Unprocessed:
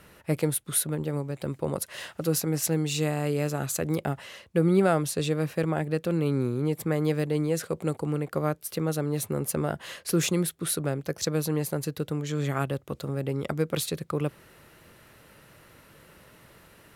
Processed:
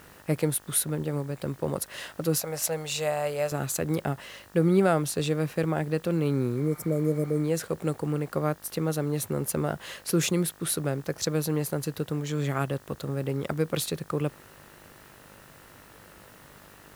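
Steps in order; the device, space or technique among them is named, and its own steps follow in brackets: 2.38–3.52 resonant low shelf 440 Hz -9 dB, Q 3; 6.59–7.37 spectral repair 740–5000 Hz after; video cassette with head-switching buzz (buzz 50 Hz, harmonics 38, -56 dBFS -1 dB/oct; white noise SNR 30 dB)

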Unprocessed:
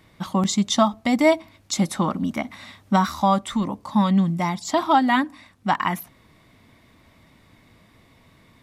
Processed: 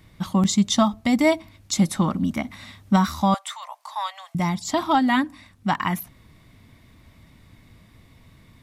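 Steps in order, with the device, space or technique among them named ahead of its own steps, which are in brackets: smiley-face EQ (low shelf 160 Hz +9 dB; bell 620 Hz -3.5 dB 2.6 oct; high shelf 9700 Hz +3.5 dB); 3.34–4.35 steep high-pass 630 Hz 72 dB/oct

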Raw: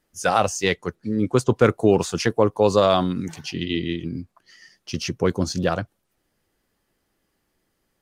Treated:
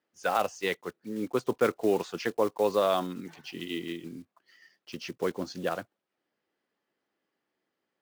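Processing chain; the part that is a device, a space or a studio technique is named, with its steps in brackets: early digital voice recorder (BPF 260–3800 Hz; block floating point 5-bit); gain -7.5 dB

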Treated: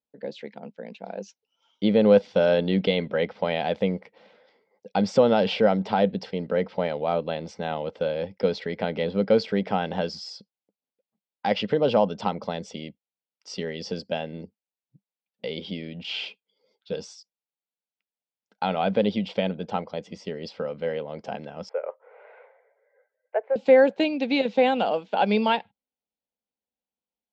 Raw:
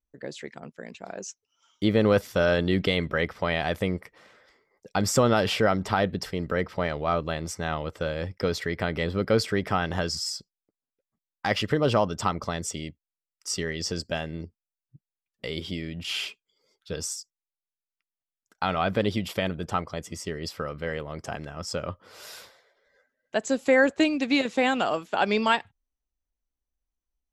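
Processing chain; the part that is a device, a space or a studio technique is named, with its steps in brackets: kitchen radio (speaker cabinet 200–4400 Hz, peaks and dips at 200 Hz +9 dB, 350 Hz -5 dB, 500 Hz +7 dB, 830 Hz +5 dB, 1200 Hz -10 dB, 1800 Hz -7 dB); 21.69–23.56 Chebyshev band-pass 410–2200 Hz, order 4

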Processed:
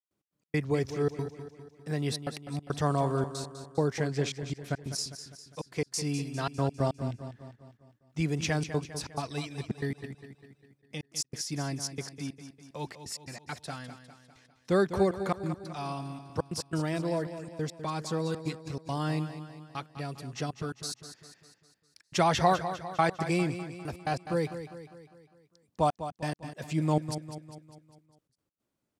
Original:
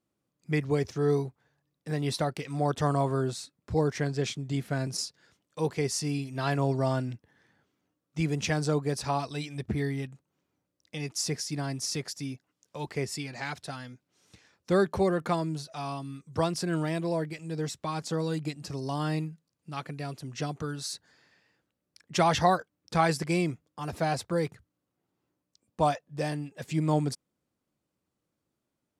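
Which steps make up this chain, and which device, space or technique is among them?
trance gate with a delay (step gate ".x.x.xxxxx" 139 bpm -60 dB; feedback echo 0.201 s, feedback 52%, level -11 dB); gain -1 dB

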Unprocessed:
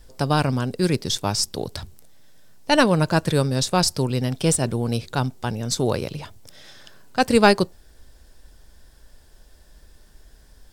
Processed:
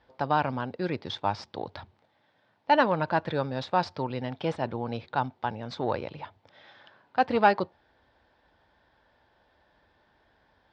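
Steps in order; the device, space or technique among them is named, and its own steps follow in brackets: guitar amplifier (tube stage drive 9 dB, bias 0.25; tone controls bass -10 dB, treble -4 dB; speaker cabinet 91–3500 Hz, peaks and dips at 95 Hz +7 dB, 410 Hz -5 dB, 870 Hz +7 dB, 2800 Hz -4 dB); gain -3 dB

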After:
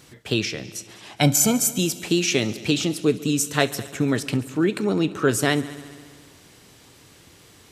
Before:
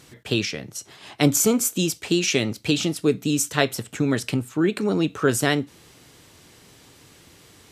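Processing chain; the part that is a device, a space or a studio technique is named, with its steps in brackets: 1.14–1.79 comb 1.3 ms, depth 70%; multi-head tape echo (multi-head echo 69 ms, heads all three, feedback 58%, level -23 dB; wow and flutter 10 cents)

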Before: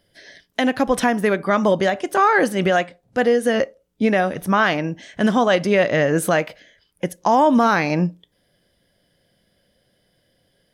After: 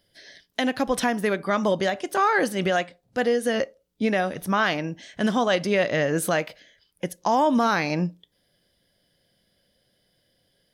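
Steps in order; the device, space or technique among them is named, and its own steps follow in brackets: presence and air boost (bell 4300 Hz +5 dB 1.1 oct; high shelf 11000 Hz +6.5 dB); gain -5.5 dB

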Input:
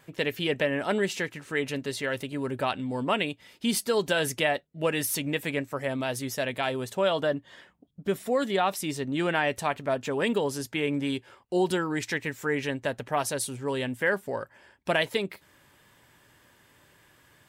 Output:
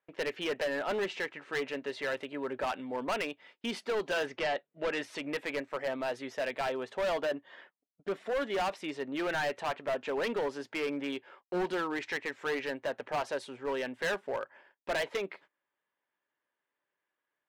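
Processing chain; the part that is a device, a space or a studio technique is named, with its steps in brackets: walkie-talkie (BPF 400–2500 Hz; hard clip -28 dBFS, distortion -8 dB; gate -55 dBFS, range -25 dB); 4.25–5.3 LPF 4200 Hz -> 11000 Hz 12 dB/oct

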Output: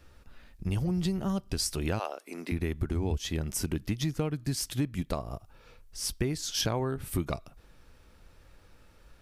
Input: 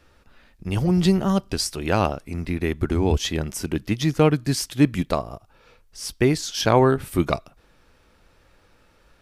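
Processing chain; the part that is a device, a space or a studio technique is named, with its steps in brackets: 1.98–2.51 HPF 520 Hz -> 240 Hz 24 dB/oct; ASMR close-microphone chain (low shelf 160 Hz +8 dB; compressor 6:1, threshold -23 dBFS, peak gain reduction 14 dB; high shelf 6700 Hz +6 dB); gain -4 dB

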